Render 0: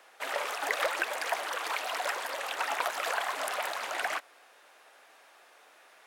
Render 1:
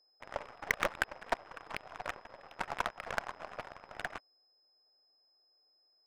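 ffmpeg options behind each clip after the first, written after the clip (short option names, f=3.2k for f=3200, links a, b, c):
-af "adynamicsmooth=sensitivity=2:basefreq=570,aeval=exprs='0.211*(cos(1*acos(clip(val(0)/0.211,-1,1)))-cos(1*PI/2))+0.0075*(cos(6*acos(clip(val(0)/0.211,-1,1)))-cos(6*PI/2))+0.0266*(cos(7*acos(clip(val(0)/0.211,-1,1)))-cos(7*PI/2))':c=same,aeval=exprs='val(0)+0.000316*sin(2*PI*5100*n/s)':c=same,volume=1dB"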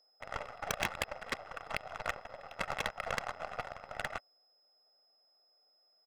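-af "aecho=1:1:1.5:0.51,afftfilt=real='re*lt(hypot(re,im),0.0891)':imag='im*lt(hypot(re,im),0.0891)':win_size=1024:overlap=0.75,volume=3dB"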